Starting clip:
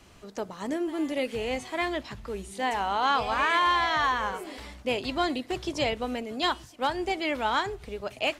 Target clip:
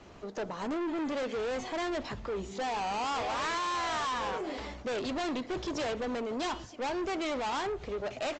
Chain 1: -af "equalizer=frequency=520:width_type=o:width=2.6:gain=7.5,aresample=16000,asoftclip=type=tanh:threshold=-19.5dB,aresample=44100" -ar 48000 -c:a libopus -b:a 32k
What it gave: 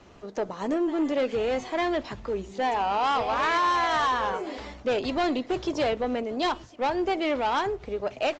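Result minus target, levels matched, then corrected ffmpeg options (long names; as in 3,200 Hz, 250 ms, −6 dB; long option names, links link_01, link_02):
soft clipping: distortion −7 dB
-af "equalizer=frequency=520:width_type=o:width=2.6:gain=7.5,aresample=16000,asoftclip=type=tanh:threshold=-31dB,aresample=44100" -ar 48000 -c:a libopus -b:a 32k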